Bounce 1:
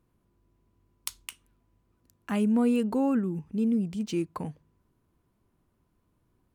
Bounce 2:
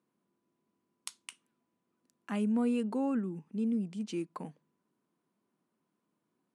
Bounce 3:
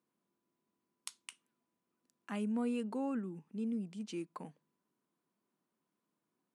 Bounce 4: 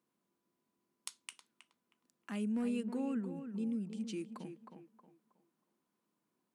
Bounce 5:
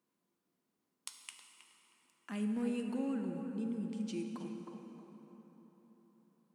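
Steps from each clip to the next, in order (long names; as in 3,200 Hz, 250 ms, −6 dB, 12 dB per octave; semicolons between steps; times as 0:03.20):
Chebyshev band-pass filter 190–9,900 Hz, order 3; level −5.5 dB
low-shelf EQ 450 Hz −3.5 dB; level −3 dB
asymmetric clip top −28.5 dBFS; tape delay 316 ms, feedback 33%, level −8 dB, low-pass 2,100 Hz; dynamic equaliser 910 Hz, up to −7 dB, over −55 dBFS, Q 0.78; level +1 dB
dense smooth reverb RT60 4.5 s, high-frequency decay 0.55×, DRR 4 dB; level −1 dB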